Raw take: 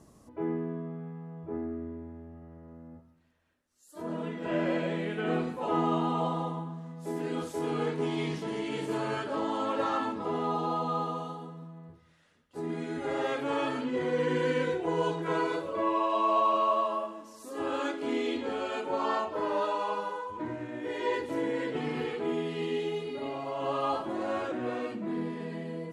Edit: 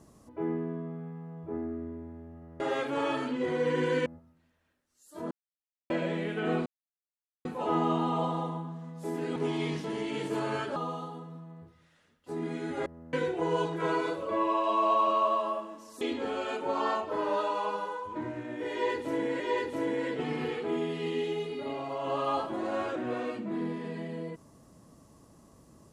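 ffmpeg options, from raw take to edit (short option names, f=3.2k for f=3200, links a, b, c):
-filter_complex "[0:a]asplit=12[a][b][c][d][e][f][g][h][i][j][k][l];[a]atrim=end=2.602[m];[b]atrim=start=13.128:end=14.592[n];[c]atrim=start=2.868:end=4.12,asetpts=PTS-STARTPTS,afade=t=out:st=1.248:d=0.004:c=hsin[o];[d]atrim=start=4.12:end=4.71,asetpts=PTS-STARTPTS,volume=0[p];[e]atrim=start=4.71:end=5.47,asetpts=PTS-STARTPTS,afade=t=in:d=0.004:c=hsin,afade=t=out:st=0.756:d=0.004:c=hsin,apad=pad_dur=0.79[q];[f]atrim=start=5.47:end=7.382,asetpts=PTS-STARTPTS,afade=t=in:d=0.004:c=hsin[r];[g]atrim=start=7.938:end=9.342[s];[h]atrim=start=11.028:end=13.132[t];[i]atrim=start=2.598:end=2.872[u];[j]atrim=start=14.588:end=17.472[v];[k]atrim=start=18.248:end=21.642[w];[l]atrim=start=20.958[x];[m][n]acrossfade=d=0.004:c1=hsin:c2=hsin[y];[o][p][q][r]concat=n=4:v=0:a=1[z];[y][z]acrossfade=d=0.004:c1=hsin:c2=hsin[aa];[aa][s]acrossfade=d=0.004:c1=hsin:c2=hsin[ab];[ab][t]acrossfade=d=0.004:c1=hsin:c2=hsin[ac];[ac][u]acrossfade=d=0.004:c1=hsin:c2=hsin[ad];[ad][v]acrossfade=d=0.004:c1=hsin:c2=hsin[ae];[ae][w]acrossfade=d=0.004:c1=hsin:c2=hsin[af];[af][x]acrossfade=d=0.004:c1=hsin:c2=hsin"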